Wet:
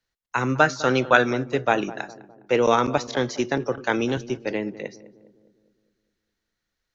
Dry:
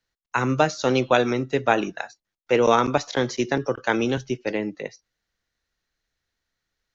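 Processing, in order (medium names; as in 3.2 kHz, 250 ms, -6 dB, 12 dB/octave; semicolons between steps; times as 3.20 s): 0.60–1.25 s: peaking EQ 1.5 kHz +10.5 dB 0.58 oct; filtered feedback delay 205 ms, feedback 54%, low-pass 970 Hz, level -15.5 dB; trim -1 dB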